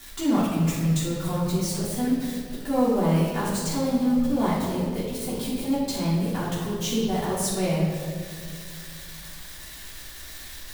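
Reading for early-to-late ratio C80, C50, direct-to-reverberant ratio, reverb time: 2.5 dB, 0.5 dB, −10.0 dB, 2.0 s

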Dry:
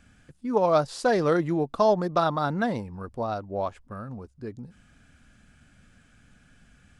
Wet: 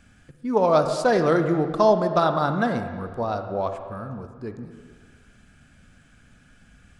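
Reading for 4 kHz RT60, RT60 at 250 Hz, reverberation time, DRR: 1.6 s, 1.8 s, 1.6 s, 7.0 dB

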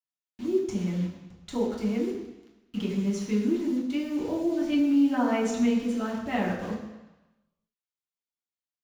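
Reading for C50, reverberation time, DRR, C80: 4.5 dB, 1.1 s, −5.5 dB, 6.0 dB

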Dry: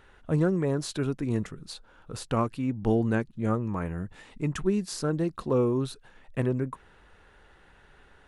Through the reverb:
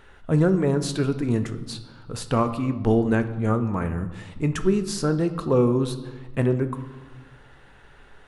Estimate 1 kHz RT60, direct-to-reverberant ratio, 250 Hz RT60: 1.2 s, 8.5 dB, 1.6 s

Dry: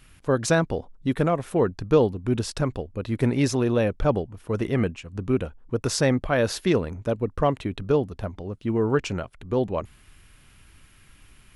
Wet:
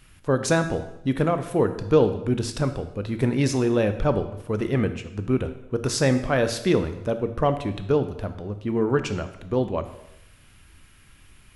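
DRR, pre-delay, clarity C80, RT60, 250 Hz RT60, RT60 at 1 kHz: 9.0 dB, 8 ms, 13.0 dB, 0.90 s, 0.85 s, 0.85 s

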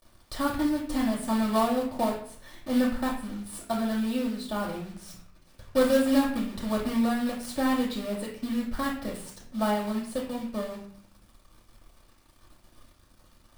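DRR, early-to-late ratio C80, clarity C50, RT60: −3.0 dB, 9.5 dB, 6.0 dB, 0.60 s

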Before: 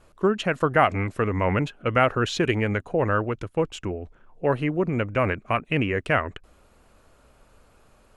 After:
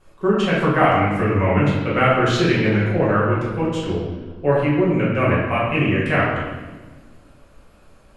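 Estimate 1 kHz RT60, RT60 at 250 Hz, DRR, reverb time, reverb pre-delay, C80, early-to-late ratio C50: 1.1 s, 2.2 s, −8.5 dB, 1.3 s, 5 ms, 3.0 dB, 0.5 dB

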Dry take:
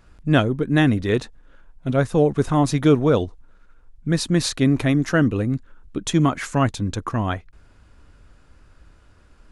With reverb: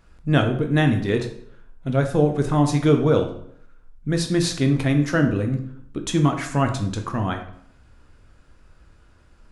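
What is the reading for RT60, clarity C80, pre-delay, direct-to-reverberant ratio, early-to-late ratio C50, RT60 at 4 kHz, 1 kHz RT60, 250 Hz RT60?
0.70 s, 12.0 dB, 10 ms, 4.5 dB, 8.5 dB, 0.50 s, 0.65 s, 0.70 s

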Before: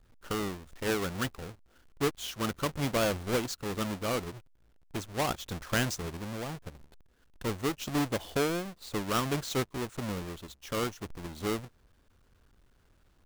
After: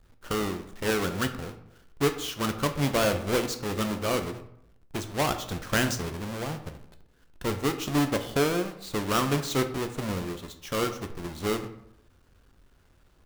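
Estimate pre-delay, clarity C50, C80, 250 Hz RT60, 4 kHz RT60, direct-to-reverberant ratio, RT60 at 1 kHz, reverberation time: 9 ms, 11.0 dB, 13.5 dB, 0.80 s, 0.45 s, 6.5 dB, 0.70 s, 0.75 s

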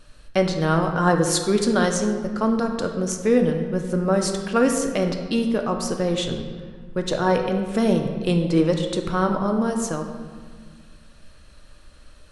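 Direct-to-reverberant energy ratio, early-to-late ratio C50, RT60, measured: 3.5 dB, 6.0 dB, 1.7 s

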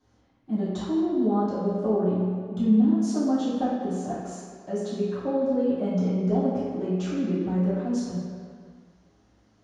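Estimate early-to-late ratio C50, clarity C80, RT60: −1.0 dB, 1.0 dB, non-exponential decay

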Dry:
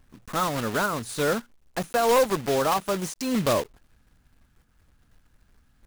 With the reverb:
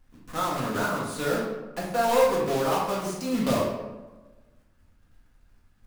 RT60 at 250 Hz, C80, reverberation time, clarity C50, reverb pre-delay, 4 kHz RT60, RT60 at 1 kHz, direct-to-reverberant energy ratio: 1.5 s, 5.0 dB, 1.2 s, 1.5 dB, 4 ms, 0.65 s, 1.1 s, −4.5 dB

